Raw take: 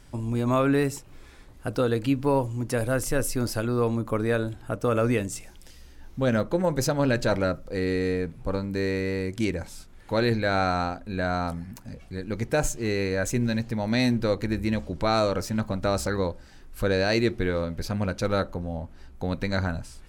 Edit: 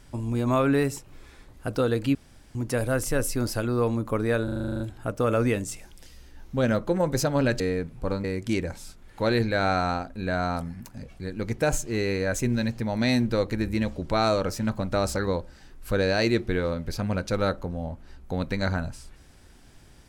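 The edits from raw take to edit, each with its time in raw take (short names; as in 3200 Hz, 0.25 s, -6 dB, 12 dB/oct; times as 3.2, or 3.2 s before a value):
2.15–2.55 room tone
4.44 stutter 0.04 s, 10 plays
7.24–8.03 cut
8.67–9.15 cut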